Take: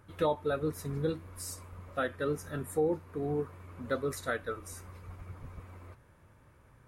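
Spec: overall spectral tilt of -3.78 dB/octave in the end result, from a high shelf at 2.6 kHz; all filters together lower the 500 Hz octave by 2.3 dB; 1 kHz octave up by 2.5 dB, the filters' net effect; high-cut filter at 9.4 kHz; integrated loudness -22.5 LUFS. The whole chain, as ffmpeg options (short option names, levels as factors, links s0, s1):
-af "lowpass=9400,equalizer=f=500:t=o:g=-3.5,equalizer=f=1000:t=o:g=6,highshelf=f=2600:g=-8,volume=4.73"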